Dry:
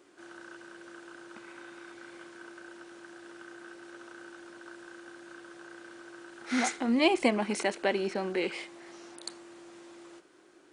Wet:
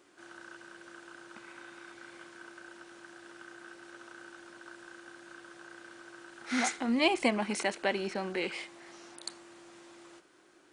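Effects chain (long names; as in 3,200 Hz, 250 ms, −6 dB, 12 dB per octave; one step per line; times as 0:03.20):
parametric band 380 Hz −4.5 dB 1.4 octaves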